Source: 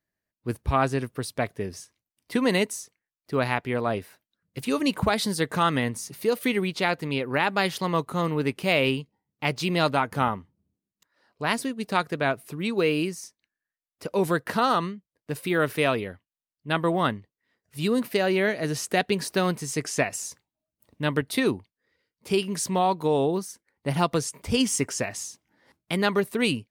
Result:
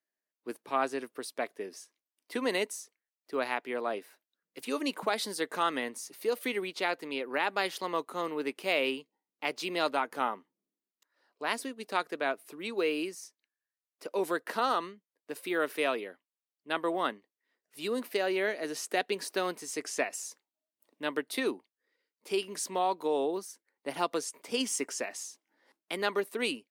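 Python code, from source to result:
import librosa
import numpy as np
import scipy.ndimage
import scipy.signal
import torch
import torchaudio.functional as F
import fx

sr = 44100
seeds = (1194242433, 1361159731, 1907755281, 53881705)

y = scipy.signal.sosfilt(scipy.signal.butter(4, 280.0, 'highpass', fs=sr, output='sos'), x)
y = F.gain(torch.from_numpy(y), -6.0).numpy()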